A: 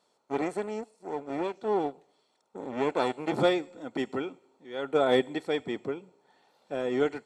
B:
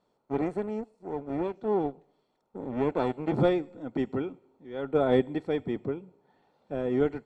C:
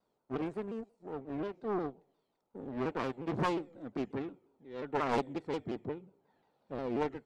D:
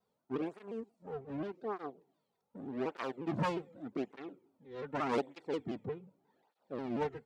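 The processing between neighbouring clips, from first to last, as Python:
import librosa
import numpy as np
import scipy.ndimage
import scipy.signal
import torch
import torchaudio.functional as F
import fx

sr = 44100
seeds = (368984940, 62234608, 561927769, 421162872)

y1 = fx.riaa(x, sr, side='playback')
y1 = y1 * 10.0 ** (-3.0 / 20.0)
y2 = fx.self_delay(y1, sr, depth_ms=0.72)
y2 = fx.vibrato_shape(y2, sr, shape='saw_down', rate_hz=5.6, depth_cents=160.0)
y2 = y2 * 10.0 ** (-6.5 / 20.0)
y3 = fx.flanger_cancel(y2, sr, hz=0.84, depth_ms=3.6)
y3 = y3 * 10.0 ** (1.0 / 20.0)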